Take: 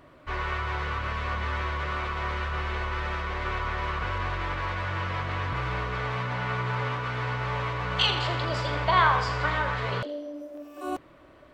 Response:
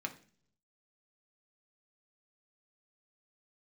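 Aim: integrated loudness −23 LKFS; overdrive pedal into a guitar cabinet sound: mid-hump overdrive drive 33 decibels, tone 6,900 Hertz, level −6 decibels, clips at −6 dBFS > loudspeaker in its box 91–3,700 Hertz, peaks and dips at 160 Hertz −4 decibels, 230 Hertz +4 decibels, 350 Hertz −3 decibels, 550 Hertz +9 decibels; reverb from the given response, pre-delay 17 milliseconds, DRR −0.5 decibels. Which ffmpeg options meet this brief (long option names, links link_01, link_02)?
-filter_complex "[0:a]asplit=2[link_01][link_02];[1:a]atrim=start_sample=2205,adelay=17[link_03];[link_02][link_03]afir=irnorm=-1:irlink=0,volume=-0.5dB[link_04];[link_01][link_04]amix=inputs=2:normalize=0,asplit=2[link_05][link_06];[link_06]highpass=frequency=720:poles=1,volume=33dB,asoftclip=type=tanh:threshold=-6dB[link_07];[link_05][link_07]amix=inputs=2:normalize=0,lowpass=frequency=6900:poles=1,volume=-6dB,highpass=91,equalizer=frequency=160:width_type=q:width=4:gain=-4,equalizer=frequency=230:width_type=q:width=4:gain=4,equalizer=frequency=350:width_type=q:width=4:gain=-3,equalizer=frequency=550:width_type=q:width=4:gain=9,lowpass=frequency=3700:width=0.5412,lowpass=frequency=3700:width=1.3066,volume=-11.5dB"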